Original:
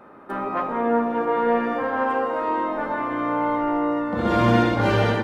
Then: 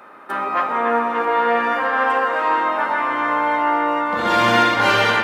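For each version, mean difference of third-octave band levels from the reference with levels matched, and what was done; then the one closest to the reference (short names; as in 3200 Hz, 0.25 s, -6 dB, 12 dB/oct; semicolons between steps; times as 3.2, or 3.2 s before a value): 6.0 dB: HPF 150 Hz 6 dB/oct; tilt shelf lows -8 dB, about 760 Hz; band-limited delay 0.287 s, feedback 63%, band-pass 1500 Hz, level -6 dB; gain +3.5 dB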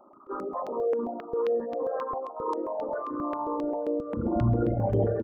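9.5 dB: formant sharpening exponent 3; echo 0.856 s -19 dB; step phaser 7.5 Hz 460–5400 Hz; gain -3.5 dB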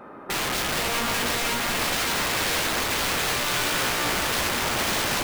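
17.0 dB: compressor 6:1, threshold -23 dBFS, peak gain reduction 10.5 dB; wrapped overs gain 25.5 dB; split-band echo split 490 Hz, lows 0.233 s, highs 0.55 s, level -6 dB; gain +4 dB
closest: first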